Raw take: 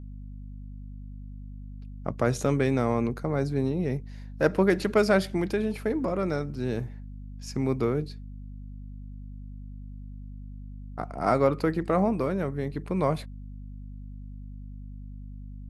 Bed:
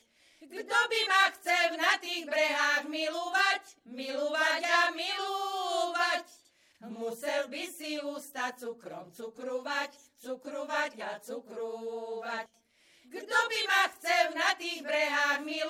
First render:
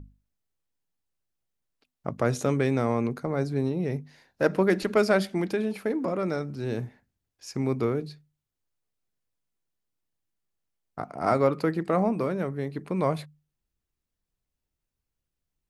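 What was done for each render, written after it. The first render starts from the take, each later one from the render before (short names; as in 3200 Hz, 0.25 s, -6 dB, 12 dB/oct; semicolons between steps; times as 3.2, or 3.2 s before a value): notches 50/100/150/200/250 Hz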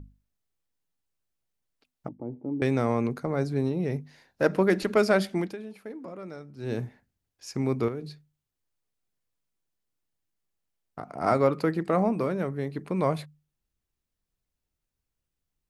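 2.08–2.62 vocal tract filter u; 5.39–6.72 dip -12 dB, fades 0.17 s; 7.88–11.14 compressor 2.5:1, threshold -33 dBFS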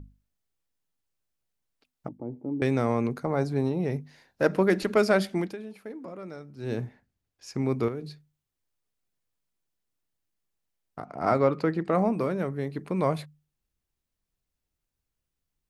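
3.25–3.9 bell 840 Hz +6 dB; 6.75–7.71 high shelf 6300 Hz -6 dB; 11.05–11.95 air absorption 63 m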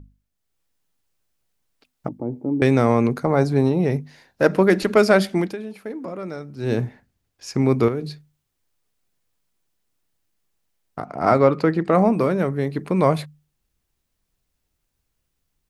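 AGC gain up to 9 dB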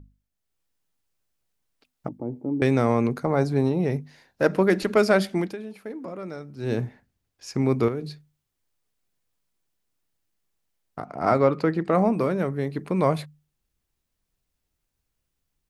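gain -4 dB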